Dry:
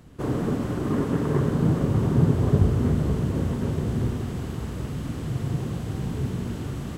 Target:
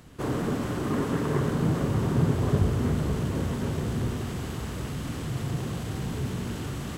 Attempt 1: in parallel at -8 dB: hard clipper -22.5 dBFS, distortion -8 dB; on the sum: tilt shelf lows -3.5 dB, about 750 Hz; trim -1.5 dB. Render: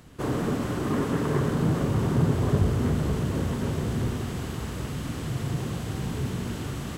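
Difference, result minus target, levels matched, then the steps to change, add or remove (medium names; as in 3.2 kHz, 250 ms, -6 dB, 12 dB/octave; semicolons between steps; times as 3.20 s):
hard clipper: distortion -4 dB
change: hard clipper -30.5 dBFS, distortion -3 dB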